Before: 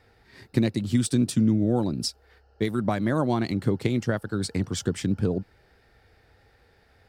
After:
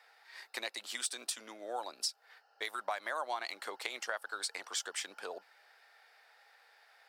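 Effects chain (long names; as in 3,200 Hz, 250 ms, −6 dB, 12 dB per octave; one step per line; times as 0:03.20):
high-pass filter 720 Hz 24 dB per octave
downward compressor 2.5 to 1, threshold −36 dBFS, peak gain reduction 8 dB
level +1 dB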